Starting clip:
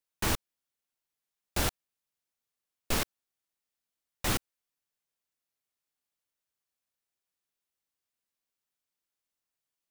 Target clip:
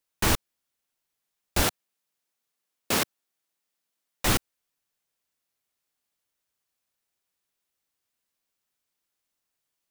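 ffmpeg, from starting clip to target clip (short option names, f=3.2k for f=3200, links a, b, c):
-filter_complex "[0:a]asettb=1/sr,asplit=3[a][b][c];[a]atrim=end=1.634[d];[b]atrim=start=1.63:end=4.25,asetpts=PTS-STARTPTS,afade=t=in:d=0.004:c=qsin,afade=t=out:st=2.616:d=0.004:c=qsin,highpass=150[e];[c]atrim=start=4.246[f];[d][e]acrossfade=d=0.004:c1=hsin:c2=qsin[g];[g][f]acrossfade=d=0.004:c1=qsin:c2=hsin,volume=6dB"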